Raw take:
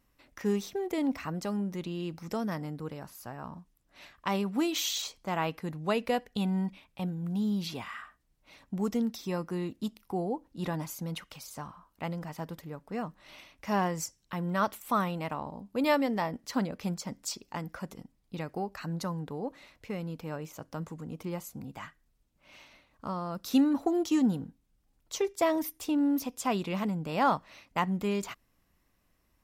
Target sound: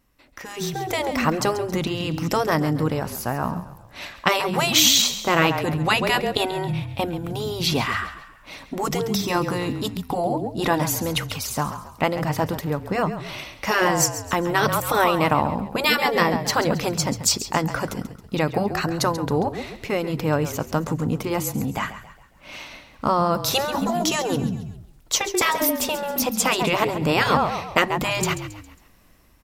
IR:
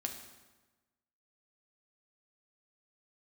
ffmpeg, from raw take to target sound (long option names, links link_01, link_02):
-filter_complex "[0:a]asplit=5[link_01][link_02][link_03][link_04][link_05];[link_02]adelay=136,afreqshift=-32,volume=-13dB[link_06];[link_03]adelay=272,afreqshift=-64,volume=-20.3dB[link_07];[link_04]adelay=408,afreqshift=-96,volume=-27.7dB[link_08];[link_05]adelay=544,afreqshift=-128,volume=-35dB[link_09];[link_01][link_06][link_07][link_08][link_09]amix=inputs=5:normalize=0,afftfilt=real='re*lt(hypot(re,im),0.158)':imag='im*lt(hypot(re,im),0.158)':win_size=1024:overlap=0.75,dynaudnorm=framelen=130:gausssize=11:maxgain=11.5dB,volume=5dB"